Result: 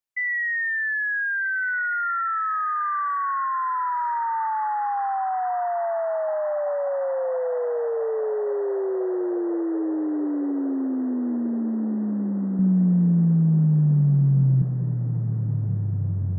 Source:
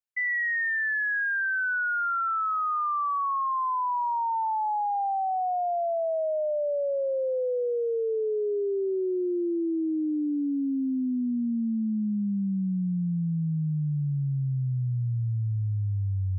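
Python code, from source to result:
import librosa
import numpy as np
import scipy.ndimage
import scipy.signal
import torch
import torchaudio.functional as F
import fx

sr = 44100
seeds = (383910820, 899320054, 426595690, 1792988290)

y = fx.low_shelf(x, sr, hz=460.0, db=8.0, at=(12.59, 14.62))
y = fx.echo_diffused(y, sr, ms=1530, feedback_pct=62, wet_db=-14.5)
y = y * librosa.db_to_amplitude(2.0)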